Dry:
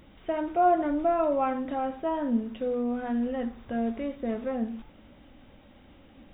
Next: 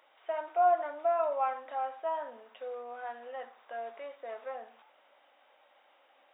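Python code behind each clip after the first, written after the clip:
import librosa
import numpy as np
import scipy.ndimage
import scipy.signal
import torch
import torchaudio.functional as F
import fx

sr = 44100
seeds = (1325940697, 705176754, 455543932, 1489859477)

y = scipy.signal.sosfilt(scipy.signal.butter(4, 650.0, 'highpass', fs=sr, output='sos'), x)
y = fx.high_shelf(y, sr, hz=2200.0, db=-9.0)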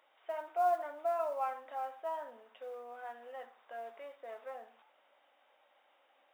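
y = fx.mod_noise(x, sr, seeds[0], snr_db=32)
y = y * 10.0 ** (-5.0 / 20.0)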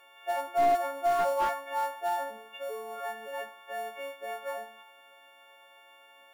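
y = fx.freq_snap(x, sr, grid_st=4)
y = fx.slew_limit(y, sr, full_power_hz=26.0)
y = y * 10.0 ** (8.0 / 20.0)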